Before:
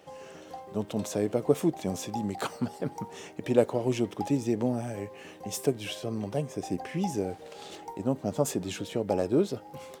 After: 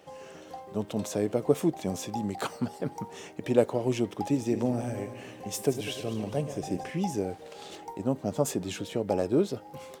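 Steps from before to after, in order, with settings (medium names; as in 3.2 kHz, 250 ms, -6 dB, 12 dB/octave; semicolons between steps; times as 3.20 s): 4.24–6.90 s: backward echo that repeats 100 ms, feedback 66%, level -11 dB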